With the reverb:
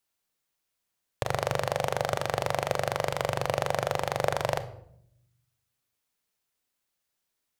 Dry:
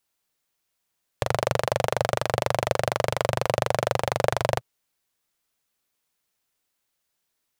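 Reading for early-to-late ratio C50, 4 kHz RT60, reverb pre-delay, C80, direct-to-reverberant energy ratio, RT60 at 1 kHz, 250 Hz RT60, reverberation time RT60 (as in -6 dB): 14.0 dB, 0.45 s, 29 ms, 17.5 dB, 11.0 dB, 0.60 s, 1.1 s, 0.70 s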